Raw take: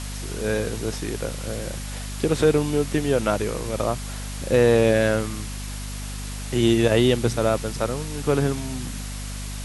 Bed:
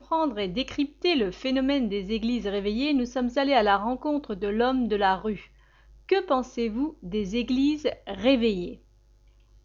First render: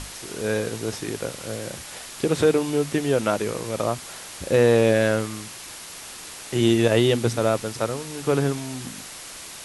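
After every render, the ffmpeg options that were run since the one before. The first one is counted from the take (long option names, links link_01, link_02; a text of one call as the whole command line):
ffmpeg -i in.wav -af "bandreject=frequency=50:width_type=h:width=6,bandreject=frequency=100:width_type=h:width=6,bandreject=frequency=150:width_type=h:width=6,bandreject=frequency=200:width_type=h:width=6,bandreject=frequency=250:width_type=h:width=6" out.wav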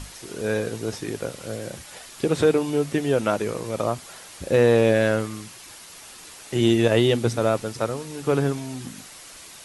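ffmpeg -i in.wav -af "afftdn=noise_reduction=6:noise_floor=-39" out.wav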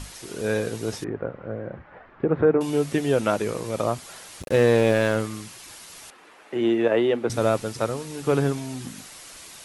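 ffmpeg -i in.wav -filter_complex "[0:a]asettb=1/sr,asplit=3[link_01][link_02][link_03];[link_01]atrim=end=1.044[link_04];[link_02]atrim=start=1.04:end=2.61,asetpts=PTS-STARTPTS,afade=type=in:duration=0.004:curve=qsin,afade=type=out:start_time=1.566:duration=0.004:curve=qsin,lowpass=frequency=1700:width=0.5412,lowpass=frequency=1700:width=1.3066[link_05];[link_03]atrim=start=2.606[link_06];[link_04][link_05]acrossfade=duration=0.004:curve1=hsin:curve2=qsin[link_07];[link_07][link_06]acrossfade=duration=0.004:curve1=qsin:curve2=hsin,asettb=1/sr,asplit=3[link_08][link_09][link_10];[link_08]atrim=end=4.424[link_11];[link_09]atrim=start=4.42:end=5.16,asetpts=PTS-STARTPTS,afade=type=in:duration=0.004:curve=qsin,afade=type=out:start_time=0.736:duration=0.004:curve=qsin,aeval=exprs='sgn(val(0))*max(abs(val(0))-0.0237,0)':channel_layout=same[link_12];[link_10]atrim=start=5.156[link_13];[link_11][link_12]acrossfade=duration=0.004:curve1=hsin:curve2=qsin[link_14];[link_14][link_13]acrossfade=duration=0.004:curve1=qsin:curve2=hsin,asettb=1/sr,asplit=3[link_15][link_16][link_17];[link_15]atrim=end=6.104[link_18];[link_16]atrim=start=6.1:end=7.3,asetpts=PTS-STARTPTS,afade=type=in:duration=0.004:curve=qsin,afade=type=out:start_time=1.196:duration=0.004:curve=qsin,acrossover=split=230 2500:gain=0.1 1 0.0891[link_19][link_20][link_21];[link_19][link_20][link_21]amix=inputs=3:normalize=0[link_22];[link_17]atrim=start=7.296[link_23];[link_18][link_22]acrossfade=duration=0.004:curve1=hsin:curve2=qsin[link_24];[link_24][link_23]acrossfade=duration=0.004:curve1=qsin:curve2=hsin" out.wav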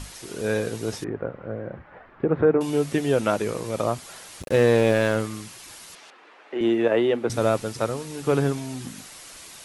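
ffmpeg -i in.wav -filter_complex "[0:a]asettb=1/sr,asplit=3[link_01][link_02][link_03];[link_01]atrim=end=5.954[link_04];[link_02]atrim=start=5.95:end=6.61,asetpts=PTS-STARTPTS,afade=type=in:duration=0.004:curve=qsin,afade=type=out:start_time=0.656:duration=0.004:curve=qsin,highpass=280,lowpass=4400[link_05];[link_03]atrim=start=6.606[link_06];[link_04][link_05]acrossfade=duration=0.004:curve1=hsin:curve2=qsin[link_07];[link_07][link_06]acrossfade=duration=0.004:curve1=qsin:curve2=hsin" out.wav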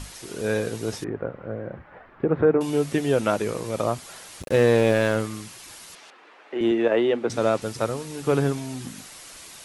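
ffmpeg -i in.wav -filter_complex "[0:a]asettb=1/sr,asplit=3[link_01][link_02][link_03];[link_01]atrim=end=6.714[link_04];[link_02]atrim=start=6.71:end=7.62,asetpts=PTS-STARTPTS,afade=type=in:duration=0.004:curve=qsin,afade=type=out:start_time=0.906:duration=0.004:curve=qsin,highpass=140,lowpass=7800[link_05];[link_03]atrim=start=7.616[link_06];[link_04][link_05]acrossfade=duration=0.004:curve1=hsin:curve2=qsin[link_07];[link_07][link_06]acrossfade=duration=0.004:curve1=qsin:curve2=hsin" out.wav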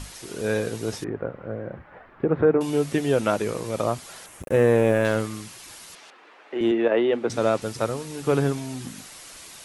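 ffmpeg -i in.wav -filter_complex "[0:a]asettb=1/sr,asplit=3[link_01][link_02][link_03];[link_01]atrim=end=4.264[link_04];[link_02]atrim=start=4.26:end=5.05,asetpts=PTS-STARTPTS,afade=type=in:duration=0.004:curve=qsin,afade=type=out:start_time=0.786:duration=0.004:curve=qsin,equalizer=frequency=4400:width=1.4:gain=-14.5[link_05];[link_03]atrim=start=5.046[link_06];[link_04][link_05]acrossfade=duration=0.004:curve1=hsin:curve2=qsin[link_07];[link_07][link_06]acrossfade=duration=0.004:curve1=qsin:curve2=hsin,asplit=3[link_08][link_09][link_10];[link_08]afade=type=out:start_time=6.71:duration=0.02[link_11];[link_09]highpass=130,lowpass=3900,afade=type=in:start_time=6.71:duration=0.02,afade=type=out:start_time=7.11:duration=0.02[link_12];[link_10]afade=type=in:start_time=7.11:duration=0.02[link_13];[link_11][link_12][link_13]amix=inputs=3:normalize=0" out.wav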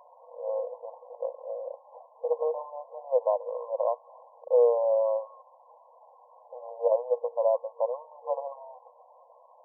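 ffmpeg -i in.wav -af "afftfilt=real='re*between(b*sr/4096,470,1100)':imag='im*between(b*sr/4096,470,1100)':win_size=4096:overlap=0.75,adynamicequalizer=threshold=0.00794:dfrequency=760:dqfactor=3.9:tfrequency=760:tqfactor=3.9:attack=5:release=100:ratio=0.375:range=3:mode=cutabove:tftype=bell" out.wav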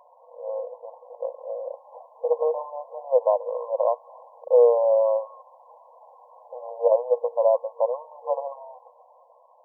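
ffmpeg -i in.wav -af "dynaudnorm=framelen=300:gausssize=9:maxgain=5dB" out.wav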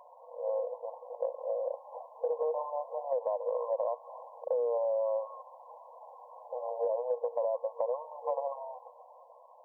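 ffmpeg -i in.wav -af "alimiter=limit=-18dB:level=0:latency=1:release=28,acompressor=threshold=-28dB:ratio=6" out.wav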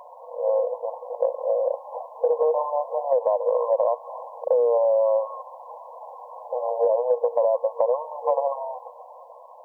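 ffmpeg -i in.wav -af "volume=10.5dB" out.wav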